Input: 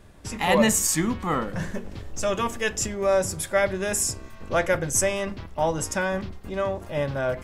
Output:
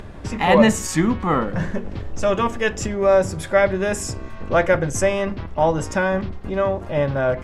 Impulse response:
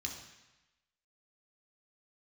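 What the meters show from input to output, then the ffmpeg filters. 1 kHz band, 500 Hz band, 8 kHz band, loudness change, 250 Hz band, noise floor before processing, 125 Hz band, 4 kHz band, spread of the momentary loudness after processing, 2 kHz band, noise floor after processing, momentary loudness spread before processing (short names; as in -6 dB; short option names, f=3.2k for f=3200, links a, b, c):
+5.5 dB, +6.0 dB, -5.0 dB, +4.5 dB, +6.5 dB, -43 dBFS, +6.5 dB, +0.5 dB, 10 LU, +4.0 dB, -35 dBFS, 12 LU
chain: -filter_complex "[0:a]aemphasis=mode=reproduction:type=75fm,asplit=2[a][b];[b]acompressor=mode=upward:threshold=-26dB:ratio=2.5,volume=-1dB[c];[a][c]amix=inputs=2:normalize=0"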